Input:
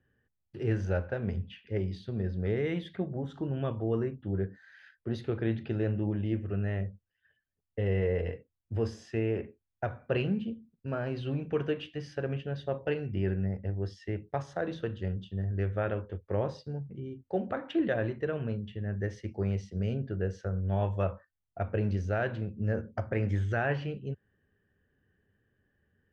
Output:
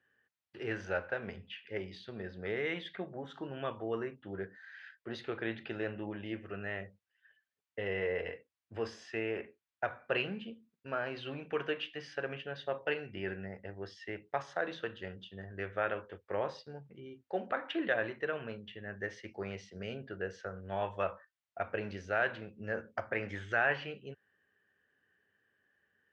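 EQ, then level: band-pass 2000 Hz, Q 0.62; +4.5 dB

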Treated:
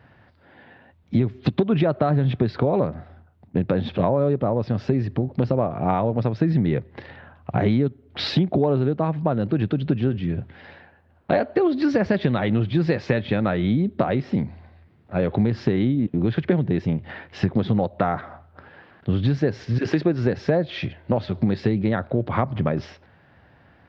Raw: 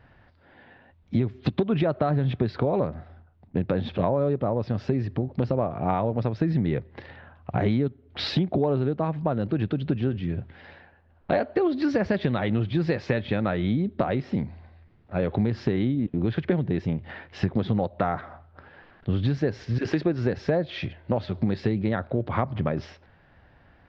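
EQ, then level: HPF 96 Hz; low shelf 180 Hz +3 dB; +3.0 dB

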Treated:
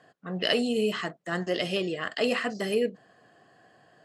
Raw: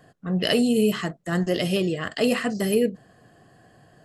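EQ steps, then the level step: HPF 540 Hz 6 dB/oct; air absorption 75 m; 0.0 dB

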